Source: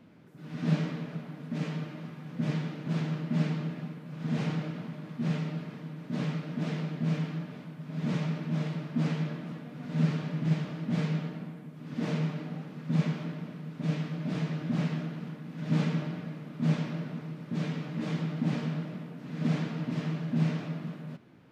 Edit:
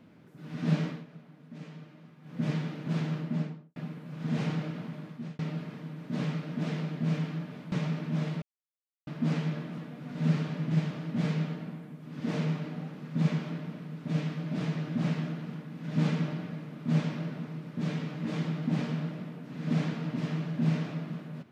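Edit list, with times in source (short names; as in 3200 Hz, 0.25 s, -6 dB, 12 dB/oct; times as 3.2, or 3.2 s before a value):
0.86–2.4 dip -11.5 dB, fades 0.19 s
3.15–3.76 studio fade out
5.01–5.39 fade out
7.72–8.11 cut
8.81 insert silence 0.65 s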